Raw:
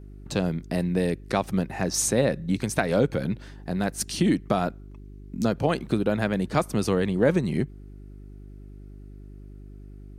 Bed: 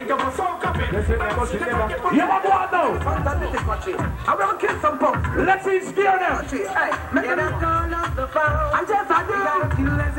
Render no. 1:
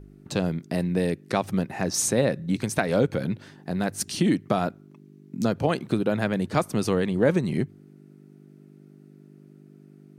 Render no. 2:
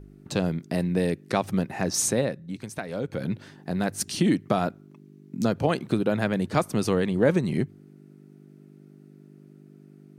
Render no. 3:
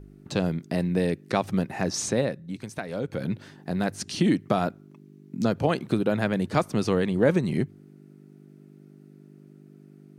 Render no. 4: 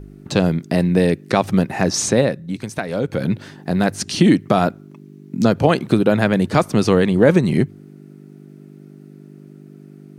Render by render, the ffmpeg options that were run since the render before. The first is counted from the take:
ffmpeg -i in.wav -af "bandreject=frequency=50:width_type=h:width=4,bandreject=frequency=100:width_type=h:width=4" out.wav
ffmpeg -i in.wav -filter_complex "[0:a]asplit=3[link_01][link_02][link_03];[link_01]atrim=end=2.4,asetpts=PTS-STARTPTS,afade=type=out:start_time=2.08:duration=0.32:silence=0.334965[link_04];[link_02]atrim=start=2.4:end=3.02,asetpts=PTS-STARTPTS,volume=-9.5dB[link_05];[link_03]atrim=start=3.02,asetpts=PTS-STARTPTS,afade=type=in:duration=0.32:silence=0.334965[link_06];[link_04][link_05][link_06]concat=n=3:v=0:a=1" out.wav
ffmpeg -i in.wav -filter_complex "[0:a]acrossover=split=6900[link_01][link_02];[link_02]acompressor=threshold=-49dB:ratio=4:attack=1:release=60[link_03];[link_01][link_03]amix=inputs=2:normalize=0" out.wav
ffmpeg -i in.wav -af "volume=9dB,alimiter=limit=-1dB:level=0:latency=1" out.wav

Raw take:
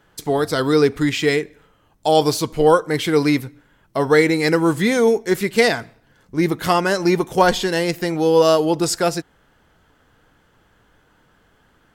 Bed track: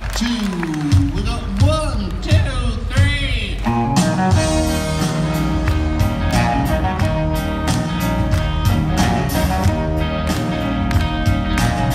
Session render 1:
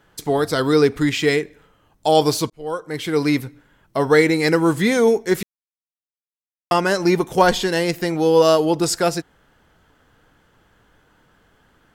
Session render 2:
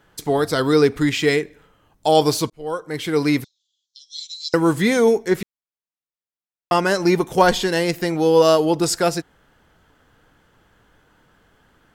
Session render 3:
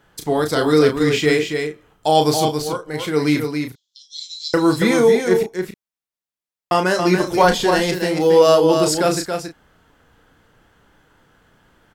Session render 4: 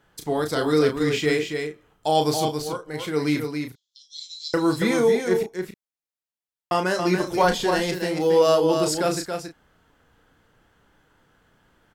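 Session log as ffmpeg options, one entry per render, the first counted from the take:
ffmpeg -i in.wav -filter_complex "[0:a]asplit=4[link_01][link_02][link_03][link_04];[link_01]atrim=end=2.5,asetpts=PTS-STARTPTS,afade=type=out:start_time=2.496:duration=0.004:curve=hsin[link_05];[link_02]atrim=start=2.5:end=5.43,asetpts=PTS-STARTPTS,afade=type=in:duration=0.94,afade=type=out:start_time=2.926:duration=0.004:curve=hsin[link_06];[link_03]atrim=start=5.43:end=6.71,asetpts=PTS-STARTPTS,volume=0[link_07];[link_04]atrim=start=6.71,asetpts=PTS-STARTPTS,afade=type=in:duration=0.004:curve=hsin[link_08];[link_05][link_06][link_07][link_08]concat=n=4:v=0:a=1" out.wav
ffmpeg -i in.wav -filter_complex "[0:a]asettb=1/sr,asplit=3[link_01][link_02][link_03];[link_01]atrim=end=3.444[link_04];[link_02]atrim=start=3.44:end=4.54,asetpts=PTS-STARTPTS,afade=type=in:duration=0.004:curve=qsin,afade=type=out:start_time=1.096:duration=0.004:curve=qsin,asuperpass=centerf=5000:order=12:qfactor=1.3[link_05];[link_03]atrim=start=4.536[link_06];[link_04][link_05]acrossfade=duration=0.004:curve1=hsin:curve2=qsin[link_07];[link_07][link_06]acrossfade=duration=0.004:curve1=qsin:curve2=hsin,asettb=1/sr,asplit=3[link_08][link_09][link_10];[link_08]atrim=end=5.284[link_11];[link_09]atrim=start=5.28:end=6.73,asetpts=PTS-STARTPTS,afade=type=in:duration=0.004:curve=qsin,afade=type=out:start_time=1.446:duration=0.004:curve=qsin,highshelf=frequency=3900:gain=-8[link_12];[link_10]atrim=start=6.726[link_13];[link_11][link_12]acrossfade=duration=0.004:curve1=hsin:curve2=qsin[link_14];[link_14][link_13]acrossfade=duration=0.004:curve1=qsin:curve2=hsin" out.wav
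ffmpeg -i in.wav -filter_complex "[0:a]asplit=2[link_01][link_02];[link_02]adelay=33,volume=-7dB[link_03];[link_01][link_03]amix=inputs=2:normalize=0,aecho=1:1:278:0.501" out.wav
ffmpeg -i in.wav -af "volume=-5.5dB" out.wav

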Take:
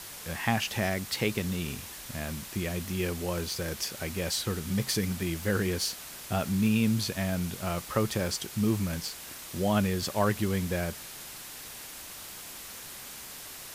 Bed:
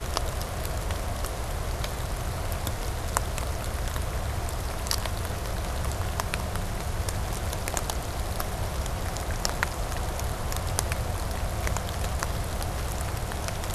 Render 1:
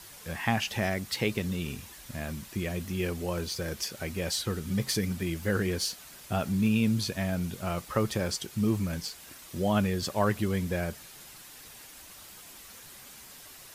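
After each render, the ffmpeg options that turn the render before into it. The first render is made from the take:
ffmpeg -i in.wav -af "afftdn=noise_reduction=7:noise_floor=-44" out.wav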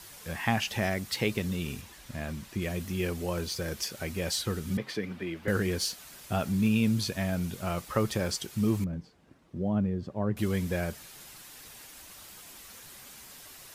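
ffmpeg -i in.wav -filter_complex "[0:a]asettb=1/sr,asplit=3[link_01][link_02][link_03];[link_01]atrim=end=1.814[link_04];[link_02]atrim=start=1.81:end=2.62,asetpts=PTS-STARTPTS,afade=type=in:duration=0.004:curve=qsin,afade=type=out:start_time=0.806:duration=0.004:curve=qsin,highshelf=frequency=7000:gain=-7.5[link_05];[link_03]atrim=start=2.616[link_06];[link_04][link_05]acrossfade=duration=0.004:curve1=hsin:curve2=qsin[link_07];[link_07][link_06]acrossfade=duration=0.004:curve1=qsin:curve2=hsin,asettb=1/sr,asplit=3[link_08][link_09][link_10];[link_08]atrim=end=4.774[link_11];[link_09]atrim=start=4.77:end=5.48,asetpts=PTS-STARTPTS,afade=type=in:duration=0.004:curve=qsin,afade=type=out:start_time=0.706:duration=0.004:curve=qsin,acrossover=split=220 3500:gain=0.2 1 0.1[link_12][link_13][link_14];[link_12][link_13][link_14]amix=inputs=3:normalize=0[link_15];[link_10]atrim=start=5.476[link_16];[link_11][link_15]acrossfade=duration=0.004:curve1=hsin:curve2=qsin[link_17];[link_17][link_16]acrossfade=duration=0.004:curve1=qsin:curve2=hsin,asettb=1/sr,asplit=3[link_18][link_19][link_20];[link_18]atrim=end=8.844[link_21];[link_19]atrim=start=8.84:end=10.37,asetpts=PTS-STARTPTS,afade=type=in:duration=0.004:curve=qsin,afade=type=out:start_time=1.526:duration=0.004:curve=qsin,bandpass=frequency=170:width_type=q:width=0.6[link_22];[link_20]atrim=start=10.366[link_23];[link_21][link_22]acrossfade=duration=0.004:curve1=hsin:curve2=qsin[link_24];[link_24][link_23]acrossfade=duration=0.004:curve1=qsin:curve2=hsin" out.wav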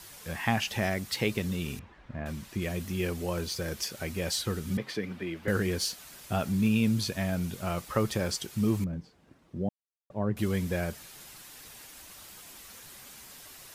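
ffmpeg -i in.wav -filter_complex "[0:a]asettb=1/sr,asplit=3[link_01][link_02][link_03];[link_01]atrim=end=1.794[link_04];[link_02]atrim=start=1.79:end=2.26,asetpts=PTS-STARTPTS,afade=type=in:duration=0.004:curve=qsin,afade=type=out:start_time=0.466:duration=0.004:curve=qsin,lowpass=1700[link_05];[link_03]atrim=start=2.256[link_06];[link_04][link_05]acrossfade=duration=0.004:curve1=hsin:curve2=qsin[link_07];[link_07][link_06]acrossfade=duration=0.004:curve1=qsin:curve2=hsin,asplit=3[link_08][link_09][link_10];[link_08]atrim=end=9.69,asetpts=PTS-STARTPTS,afade=type=out:start_time=9.686:duration=0.004:curve=hsin[link_11];[link_09]atrim=start=9.69:end=10.1,asetpts=PTS-STARTPTS,volume=0[link_12];[link_10]atrim=start=10.1,asetpts=PTS-STARTPTS,afade=type=in:duration=0.004:curve=hsin[link_13];[link_11][link_12][link_13]concat=n=3:v=0:a=1" out.wav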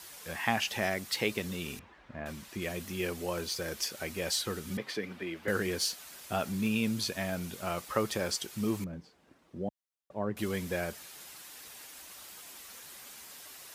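ffmpeg -i in.wav -af "highpass=60,equalizer=frequency=110:width=0.63:gain=-9.5" out.wav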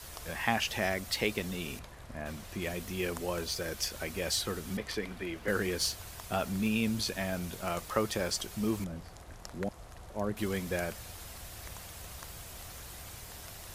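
ffmpeg -i in.wav -i bed.wav -filter_complex "[1:a]volume=-19dB[link_01];[0:a][link_01]amix=inputs=2:normalize=0" out.wav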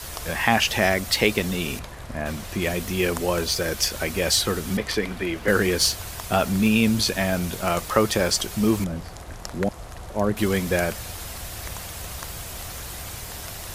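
ffmpeg -i in.wav -af "volume=11dB,alimiter=limit=-2dB:level=0:latency=1" out.wav

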